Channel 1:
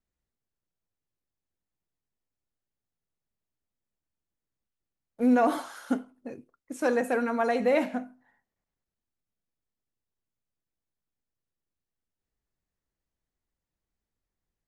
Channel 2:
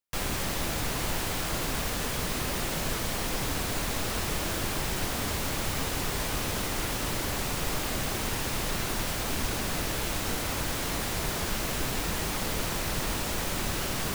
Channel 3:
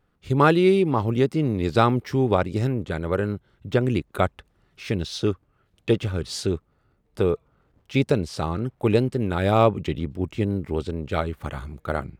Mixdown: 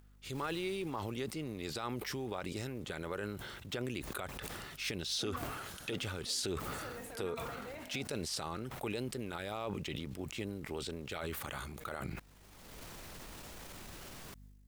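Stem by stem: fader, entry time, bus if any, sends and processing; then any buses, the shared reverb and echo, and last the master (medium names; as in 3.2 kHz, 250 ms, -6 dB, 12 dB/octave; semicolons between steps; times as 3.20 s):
-12.0 dB, 0.00 s, bus A, no send, tilt EQ +2.5 dB/octave; hum 50 Hz, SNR 28 dB; upward compressor, threshold -37 dBFS
-15.5 dB, 0.20 s, bus A, no send, auto duck -23 dB, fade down 1.25 s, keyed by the third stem
-5.0 dB, 0.00 s, no bus, no send, compression 6:1, threshold -27 dBFS, peak gain reduction 14.5 dB; tilt EQ +3 dB/octave; decay stretcher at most 32 dB/s
bus A: 0.0 dB, transient shaper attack -7 dB, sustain +8 dB; compression 10:1, threshold -45 dBFS, peak gain reduction 13 dB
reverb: none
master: peak limiter -26.5 dBFS, peak gain reduction 9.5 dB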